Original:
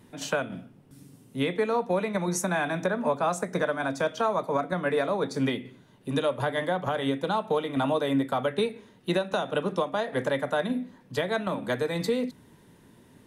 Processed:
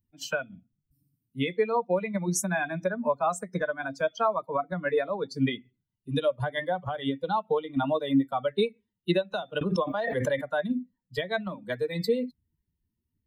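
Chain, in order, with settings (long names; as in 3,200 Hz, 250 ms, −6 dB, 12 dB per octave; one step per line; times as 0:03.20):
spectral dynamics exaggerated over time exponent 2
0:09.61–0:10.49: background raised ahead of every attack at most 28 dB per second
level +4 dB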